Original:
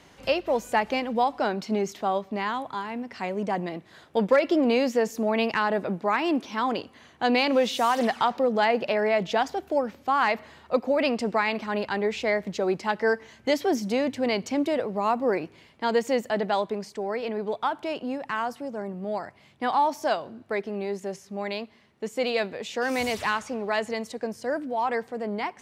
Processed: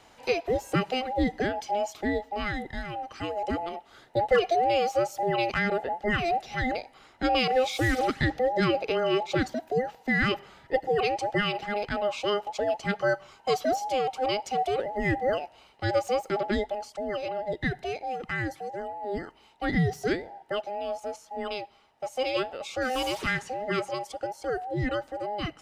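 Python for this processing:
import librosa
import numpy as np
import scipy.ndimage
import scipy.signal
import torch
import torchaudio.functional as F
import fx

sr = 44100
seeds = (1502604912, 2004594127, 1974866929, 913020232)

y = fx.band_invert(x, sr, width_hz=1000)
y = y * 10.0 ** (-2.0 / 20.0)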